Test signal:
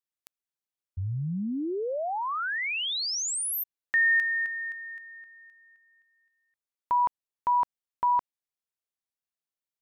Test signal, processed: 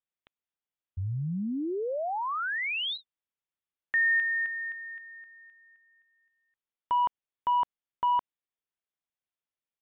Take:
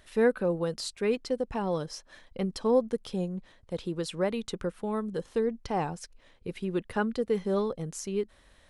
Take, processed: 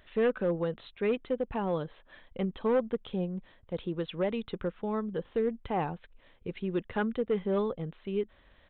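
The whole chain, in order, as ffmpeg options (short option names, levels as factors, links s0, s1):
-filter_complex "[0:a]asplit=2[s0][s1];[s1]aeval=exprs='0.0841*(abs(mod(val(0)/0.0841+3,4)-2)-1)':c=same,volume=0.708[s2];[s0][s2]amix=inputs=2:normalize=0,aresample=8000,aresample=44100,volume=0.531"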